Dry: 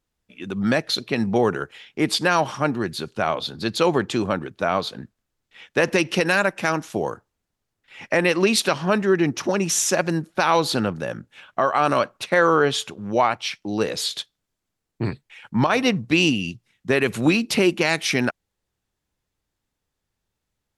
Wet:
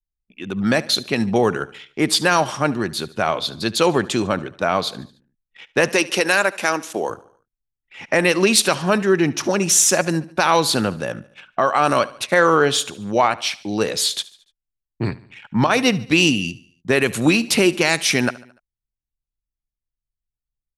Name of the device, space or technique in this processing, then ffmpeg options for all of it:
exciter from parts: -filter_complex "[0:a]asettb=1/sr,asplit=3[s0][s1][s2];[s0]atrim=end=5.914[s3];[s1]atrim=start=5.91:end=7.1,asetpts=PTS-STARTPTS,afade=t=in:d=0.004:c=qsin,afade=t=out:st=1.186:d=0.004:c=qsin,highpass=290[s4];[s2]atrim=start=7.096[s5];[s3][s4]acrossfade=d=0.004:c1=hsin:c2=qsin[s6];[s6][s5]acrossfade=d=0.004:c1=qsin:c2=hsin,anlmdn=0.0631,adynamicequalizer=threshold=0.00891:dfrequency=9000:dqfactor=0.84:tfrequency=9000:tqfactor=0.84:attack=5:release=100:ratio=0.375:range=3:mode=boostabove:tftype=bell,asplit=2[s7][s8];[s8]highpass=f=2600:p=1,asoftclip=type=tanh:threshold=0.0631,volume=0.355[s9];[s7][s9]amix=inputs=2:normalize=0,aecho=1:1:73|146|219|292:0.1|0.051|0.026|0.0133,volume=1.26"

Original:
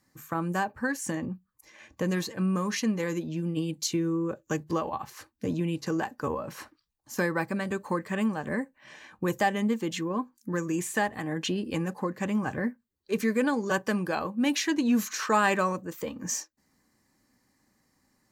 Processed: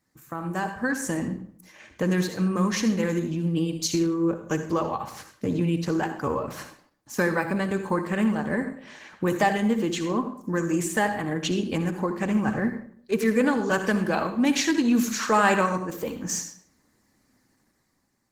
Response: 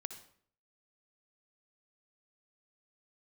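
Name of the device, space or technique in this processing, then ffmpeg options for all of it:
speakerphone in a meeting room: -filter_complex "[1:a]atrim=start_sample=2205[s0];[0:a][s0]afir=irnorm=-1:irlink=0,dynaudnorm=f=120:g=11:m=2.24" -ar 48000 -c:a libopus -b:a 16k

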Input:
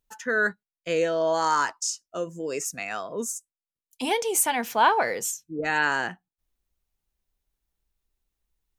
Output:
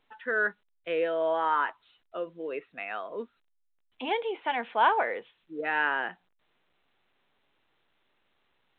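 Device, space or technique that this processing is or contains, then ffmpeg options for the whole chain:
telephone: -af "highpass=320,lowpass=3400,volume=0.708" -ar 8000 -c:a pcm_alaw

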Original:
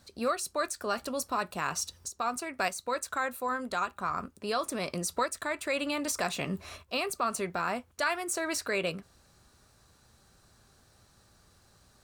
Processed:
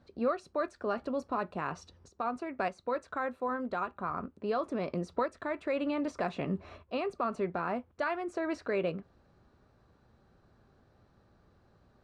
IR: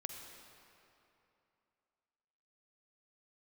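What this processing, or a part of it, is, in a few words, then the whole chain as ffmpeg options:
phone in a pocket: -af "lowpass=4000,equalizer=f=330:t=o:w=2.4:g=5,highshelf=f=2400:g=-12,volume=0.75"

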